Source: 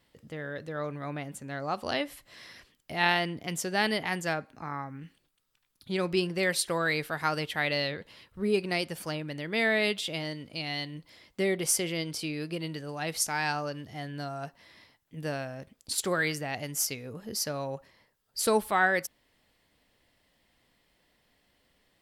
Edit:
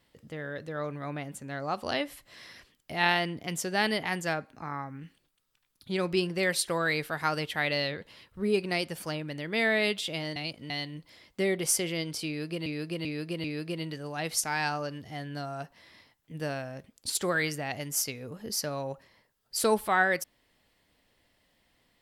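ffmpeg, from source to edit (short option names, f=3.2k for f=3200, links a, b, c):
-filter_complex "[0:a]asplit=6[a][b][c][d][e][f];[a]atrim=end=10.362[g];[b]atrim=start=10.358:end=10.702,asetpts=PTS-STARTPTS,areverse[h];[c]atrim=start=10.698:end=12.662[i];[d]atrim=start=12.268:end=12.662[j];[e]atrim=start=12.268:end=12.662[k];[f]atrim=start=12.268[l];[g][h]acrossfade=d=0.004:c1=hsin:c2=hsin[m];[m][i]acrossfade=d=0.004:c1=hsin:c2=hsin[n];[n][j]acrossfade=d=0.004:c1=hsin:c2=hsin[o];[o][k]acrossfade=d=0.004:c1=hsin:c2=hsin[p];[p][l]acrossfade=d=0.004:c1=hsin:c2=hsin"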